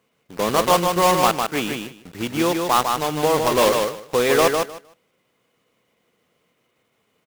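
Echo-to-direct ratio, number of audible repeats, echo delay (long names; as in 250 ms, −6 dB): −4.5 dB, 2, 153 ms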